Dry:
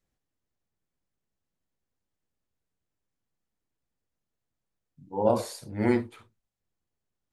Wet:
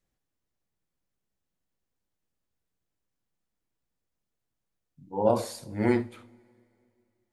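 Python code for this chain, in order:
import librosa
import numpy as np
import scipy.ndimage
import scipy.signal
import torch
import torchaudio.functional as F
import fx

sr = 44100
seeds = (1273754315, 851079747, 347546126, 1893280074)

y = fx.rev_double_slope(x, sr, seeds[0], early_s=0.48, late_s=2.6, knee_db=-16, drr_db=16.0)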